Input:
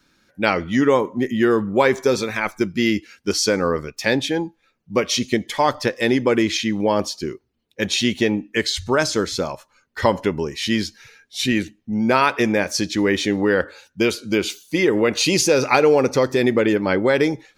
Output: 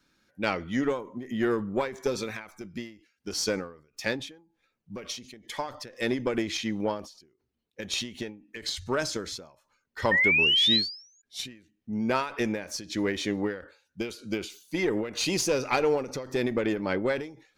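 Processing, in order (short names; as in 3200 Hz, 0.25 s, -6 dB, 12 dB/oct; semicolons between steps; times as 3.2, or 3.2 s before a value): one diode to ground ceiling -10 dBFS; painted sound rise, 10.11–11.22, 1800–7000 Hz -14 dBFS; ending taper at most 120 dB/s; gain -8 dB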